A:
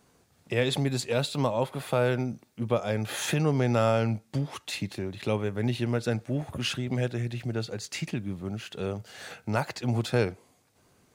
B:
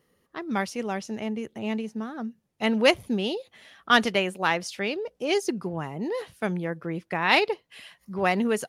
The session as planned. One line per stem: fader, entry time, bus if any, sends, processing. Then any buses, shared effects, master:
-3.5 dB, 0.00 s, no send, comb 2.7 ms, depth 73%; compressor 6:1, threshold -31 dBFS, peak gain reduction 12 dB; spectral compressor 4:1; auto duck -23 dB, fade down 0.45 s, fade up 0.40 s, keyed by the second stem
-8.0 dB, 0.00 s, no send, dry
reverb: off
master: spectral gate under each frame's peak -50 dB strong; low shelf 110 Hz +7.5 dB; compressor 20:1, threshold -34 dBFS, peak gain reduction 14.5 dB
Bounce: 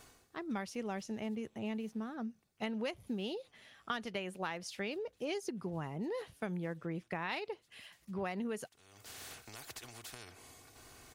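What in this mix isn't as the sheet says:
stem A -3.5 dB -> -11.5 dB; master: missing spectral gate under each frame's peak -50 dB strong

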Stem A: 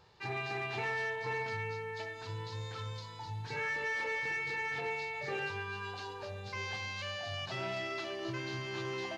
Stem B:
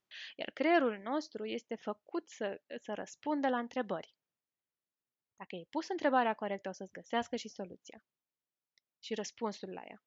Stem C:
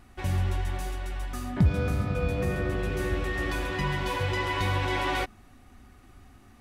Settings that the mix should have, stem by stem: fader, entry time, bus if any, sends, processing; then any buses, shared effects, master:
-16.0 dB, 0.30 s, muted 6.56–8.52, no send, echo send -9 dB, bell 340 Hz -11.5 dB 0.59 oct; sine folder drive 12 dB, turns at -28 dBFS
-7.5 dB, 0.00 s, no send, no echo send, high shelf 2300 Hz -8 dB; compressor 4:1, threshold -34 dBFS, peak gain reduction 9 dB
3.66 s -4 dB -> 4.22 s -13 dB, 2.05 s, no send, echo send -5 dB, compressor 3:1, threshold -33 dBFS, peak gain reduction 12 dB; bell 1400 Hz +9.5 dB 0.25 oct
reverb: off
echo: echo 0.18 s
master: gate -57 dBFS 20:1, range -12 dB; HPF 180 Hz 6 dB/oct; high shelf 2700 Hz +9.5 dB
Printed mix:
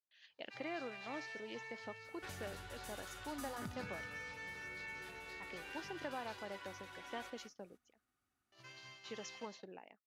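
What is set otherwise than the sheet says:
stem A: missing sine folder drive 12 dB, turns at -28 dBFS; stem C -4.0 dB -> -12.5 dB

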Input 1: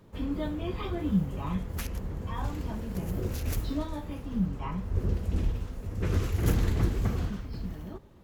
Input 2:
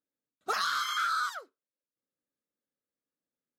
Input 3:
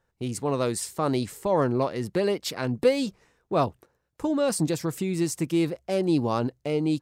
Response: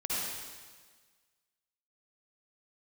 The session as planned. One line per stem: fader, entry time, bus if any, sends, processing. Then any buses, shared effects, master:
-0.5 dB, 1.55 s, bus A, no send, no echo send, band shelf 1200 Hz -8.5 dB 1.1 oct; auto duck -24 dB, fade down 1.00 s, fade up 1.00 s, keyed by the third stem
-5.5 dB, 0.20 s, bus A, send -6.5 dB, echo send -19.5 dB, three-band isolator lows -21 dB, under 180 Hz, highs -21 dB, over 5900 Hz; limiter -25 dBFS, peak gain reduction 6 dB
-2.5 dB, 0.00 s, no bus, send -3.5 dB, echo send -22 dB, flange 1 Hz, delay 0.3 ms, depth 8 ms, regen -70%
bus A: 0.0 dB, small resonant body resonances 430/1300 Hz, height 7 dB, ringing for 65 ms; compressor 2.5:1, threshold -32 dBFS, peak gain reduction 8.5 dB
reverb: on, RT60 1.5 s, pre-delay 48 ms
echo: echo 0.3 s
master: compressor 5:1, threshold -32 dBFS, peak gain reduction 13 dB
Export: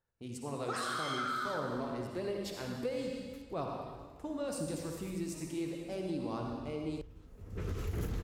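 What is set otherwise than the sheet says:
stem 1: missing band shelf 1200 Hz -8.5 dB 1.1 oct; stem 3 -2.5 dB -> -13.0 dB

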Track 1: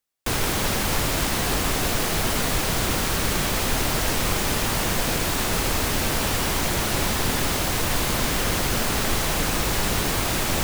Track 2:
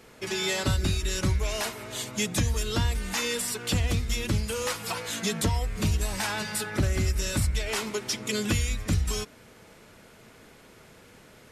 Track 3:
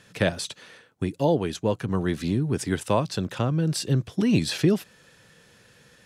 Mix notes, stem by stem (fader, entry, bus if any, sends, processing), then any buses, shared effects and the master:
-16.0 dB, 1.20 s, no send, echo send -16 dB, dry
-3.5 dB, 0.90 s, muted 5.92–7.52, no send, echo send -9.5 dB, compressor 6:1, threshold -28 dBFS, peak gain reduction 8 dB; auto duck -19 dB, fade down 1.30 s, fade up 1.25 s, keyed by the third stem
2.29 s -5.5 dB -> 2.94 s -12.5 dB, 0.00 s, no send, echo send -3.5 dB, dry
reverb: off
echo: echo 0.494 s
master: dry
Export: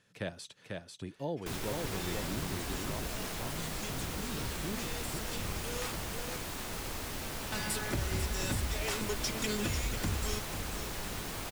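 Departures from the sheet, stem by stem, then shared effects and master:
stem 2: entry 0.90 s -> 1.15 s; stem 3 -5.5 dB -> -15.0 dB

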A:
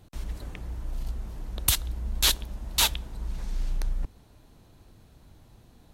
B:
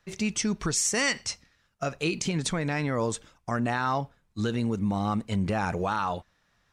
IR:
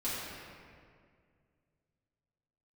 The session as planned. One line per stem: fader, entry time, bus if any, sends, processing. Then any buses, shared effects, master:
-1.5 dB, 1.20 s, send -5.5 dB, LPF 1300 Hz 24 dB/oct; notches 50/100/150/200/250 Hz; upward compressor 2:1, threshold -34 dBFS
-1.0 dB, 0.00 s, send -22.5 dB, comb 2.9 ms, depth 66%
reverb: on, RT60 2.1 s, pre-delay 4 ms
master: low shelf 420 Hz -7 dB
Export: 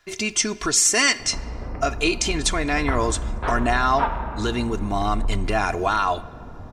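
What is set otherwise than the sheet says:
stem A -1.5 dB -> +9.0 dB; stem B -1.0 dB -> +7.0 dB

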